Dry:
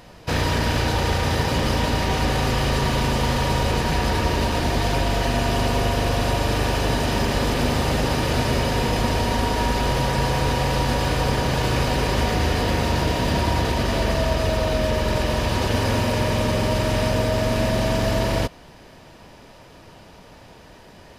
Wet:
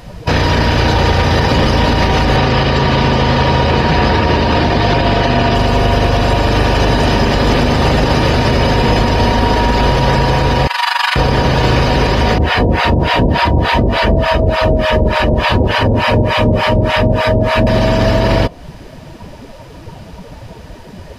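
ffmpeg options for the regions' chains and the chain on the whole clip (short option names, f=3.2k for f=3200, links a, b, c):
-filter_complex "[0:a]asettb=1/sr,asplit=3[a][b][c];[a]atrim=end=2.364[d];[b]atrim=start=2.36:end=5.55,asetpts=PTS-STARTPTS,afade=t=in:d=0.004:c=qsin,afade=t=out:st=3.186:d=0.004:c=qsin,acrossover=split=7400[e][f];[f]acompressor=threshold=-55dB:ratio=4:attack=1:release=60[g];[e][g]amix=inputs=2:normalize=0,highpass=66[h];[c]atrim=start=5.546[i];[d][h]acrossfade=d=0.004:c1=hsin:c2=qsin[j];[j][i]acrossfade=d=0.004:c1=qsin:c2=hsin,asettb=1/sr,asplit=3[k][l][m];[k]atrim=end=10.674[n];[l]atrim=start=10.67:end=11.16,asetpts=PTS-STARTPTS,afade=t=in:d=0.004:c=qsin,afade=t=out:st=0.486:d=0.004:c=qsin,equalizer=f=5.7k:w=3.7:g=-3,tremolo=f=24:d=0.75,highpass=f=980:w=0.5412,highpass=f=980:w=1.3066[o];[m]atrim=start=11.156[p];[n][o]acrossfade=d=0.004:c1=hsin:c2=qsin[q];[q][p]acrossfade=d=0.004:c1=qsin:c2=hsin,asettb=1/sr,asplit=3[r][s][t];[r]atrim=end=12.384[u];[s]atrim=start=12.38:end=17.67,asetpts=PTS-STARTPTS,afade=t=in:d=0.004:c=qsin,afade=t=out:st=5.286:d=0.004:c=qsin,acrossover=split=4400[v][w];[w]acompressor=threshold=-41dB:ratio=4:attack=1:release=60[x];[v][x]amix=inputs=2:normalize=0,acrossover=split=720[y][z];[y]aeval=exprs='val(0)*(1-1/2+1/2*cos(2*PI*3.4*n/s))':c=same[aa];[z]aeval=exprs='val(0)*(1-1/2-1/2*cos(2*PI*3.4*n/s))':c=same[ab];[aa][ab]amix=inputs=2:normalize=0[ac];[t]atrim=start=17.666[ad];[u][ac]acrossfade=d=0.004:c1=hsin:c2=qsin[ae];[ae][ad]acrossfade=d=0.004:c1=qsin:c2=hsin,afftdn=nr=14:nf=-35,acompressor=threshold=-28dB:ratio=6,alimiter=level_in=23.5dB:limit=-1dB:release=50:level=0:latency=1,volume=-2dB"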